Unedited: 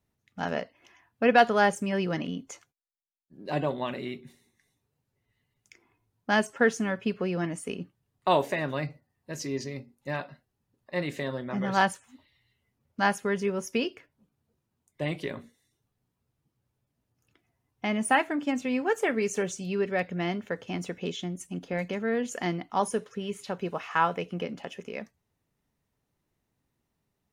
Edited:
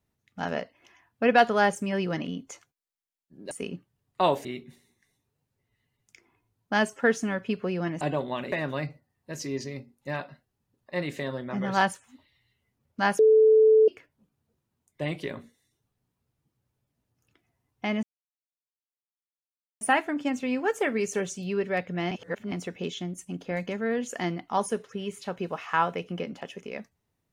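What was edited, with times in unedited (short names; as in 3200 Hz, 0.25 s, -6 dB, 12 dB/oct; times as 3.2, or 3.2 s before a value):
3.51–4.02 swap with 7.58–8.52
13.19–13.88 bleep 437 Hz -14 dBFS
18.03 insert silence 1.78 s
20.33–20.74 reverse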